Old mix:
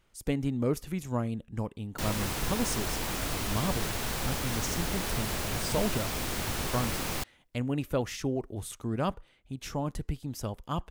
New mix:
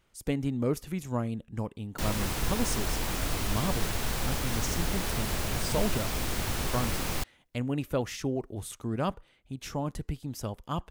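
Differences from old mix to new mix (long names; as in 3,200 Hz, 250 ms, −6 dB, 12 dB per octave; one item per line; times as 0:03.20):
speech: add low-shelf EQ 61 Hz −11 dB
master: add low-shelf EQ 84 Hz +6.5 dB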